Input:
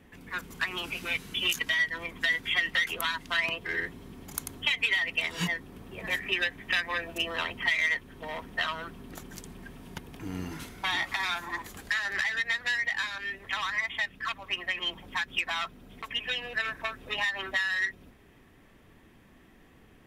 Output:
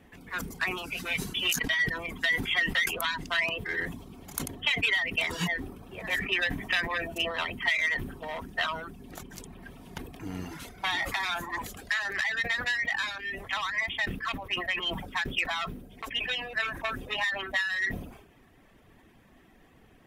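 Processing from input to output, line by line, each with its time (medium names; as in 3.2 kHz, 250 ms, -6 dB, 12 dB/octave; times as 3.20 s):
0.44–0.89 s: peaking EQ 3.1 kHz -7 dB 0.26 oct
whole clip: reverb removal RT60 0.59 s; peaking EQ 710 Hz +4 dB 0.48 oct; decay stretcher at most 74 dB/s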